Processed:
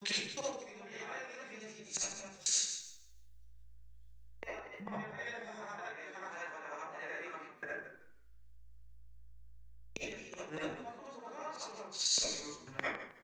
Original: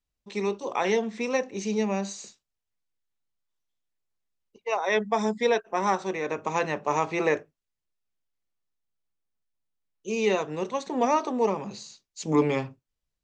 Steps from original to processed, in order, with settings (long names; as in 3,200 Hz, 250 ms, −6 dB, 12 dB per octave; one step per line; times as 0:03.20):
slices reordered back to front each 123 ms, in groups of 3
parametric band 1,600 Hz +13 dB 0.35 octaves
gate with flip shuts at −25 dBFS, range −28 dB
comb and all-pass reverb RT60 0.45 s, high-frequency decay 0.6×, pre-delay 30 ms, DRR −8.5 dB
downward compressor 2.5 to 1, threshold −52 dBFS, peak gain reduction 17 dB
tilt shelving filter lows −5 dB, about 1,200 Hz
echo with shifted repeats 157 ms, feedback 37%, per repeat −56 Hz, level −9.5 dB
multiband upward and downward expander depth 70%
level +7.5 dB